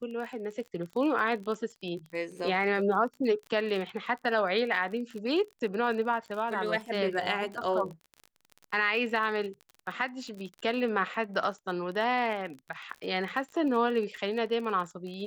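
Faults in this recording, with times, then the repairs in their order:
crackle 39 per s -37 dBFS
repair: de-click

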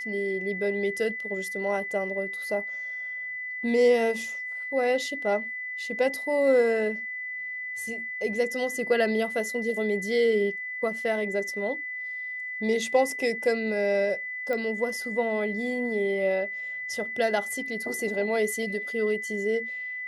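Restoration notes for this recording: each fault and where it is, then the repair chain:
whine 2 kHz -32 dBFS
14.53 s: pop -19 dBFS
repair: de-click; band-stop 2 kHz, Q 30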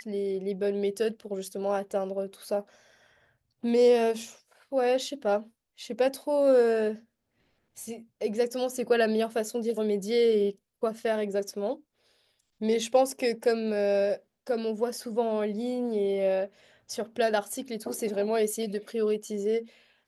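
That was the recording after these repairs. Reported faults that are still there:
nothing left

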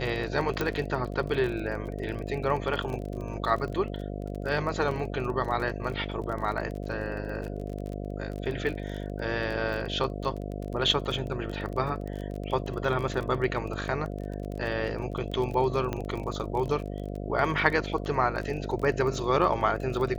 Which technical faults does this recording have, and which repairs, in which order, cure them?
buzz 50 Hz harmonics 14 -35 dBFS
crackle 27 per s -33 dBFS
0.61 s: pop -14 dBFS
4.91 s: dropout 3.2 ms
15.93 s: pop -17 dBFS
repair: de-click; de-hum 50 Hz, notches 14; interpolate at 4.91 s, 3.2 ms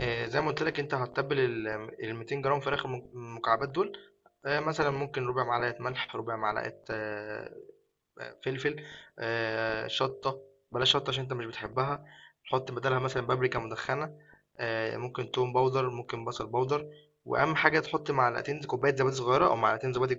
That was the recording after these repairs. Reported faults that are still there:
nothing left

